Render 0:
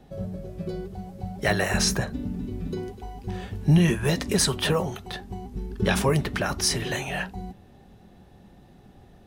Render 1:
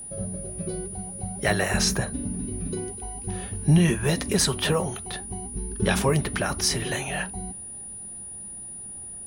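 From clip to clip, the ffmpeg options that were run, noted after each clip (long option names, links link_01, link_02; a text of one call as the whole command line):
ffmpeg -i in.wav -af "aeval=exprs='val(0)+0.0158*sin(2*PI*9700*n/s)':channel_layout=same" out.wav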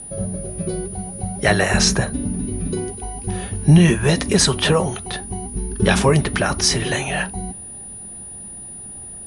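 ffmpeg -i in.wav -af "lowpass=frequency=9400:width=0.5412,lowpass=frequency=9400:width=1.3066,volume=7dB" out.wav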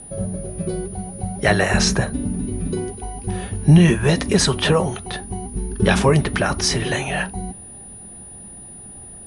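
ffmpeg -i in.wav -af "highshelf=frequency=4700:gain=-5" out.wav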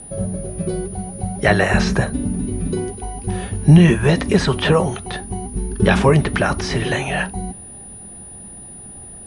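ffmpeg -i in.wav -filter_complex "[0:a]acrossover=split=3500[link_01][link_02];[link_02]acompressor=threshold=-36dB:ratio=4:attack=1:release=60[link_03];[link_01][link_03]amix=inputs=2:normalize=0,volume=2dB" out.wav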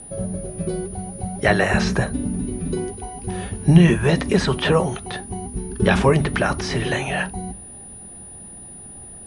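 ffmpeg -i in.wav -af "bandreject=frequency=50:width_type=h:width=6,bandreject=frequency=100:width_type=h:width=6,bandreject=frequency=150:width_type=h:width=6,bandreject=frequency=200:width_type=h:width=6,volume=-2dB" out.wav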